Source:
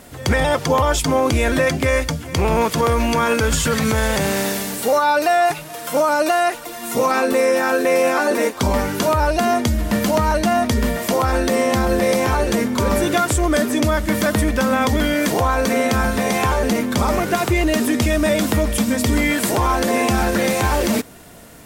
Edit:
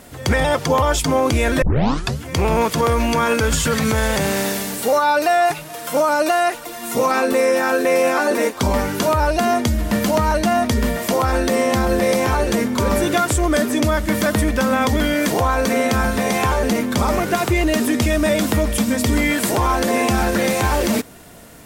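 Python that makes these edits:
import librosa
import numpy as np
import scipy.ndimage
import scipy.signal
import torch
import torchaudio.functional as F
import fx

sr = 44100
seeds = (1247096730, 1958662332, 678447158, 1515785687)

y = fx.edit(x, sr, fx.tape_start(start_s=1.62, length_s=0.59), tone=tone)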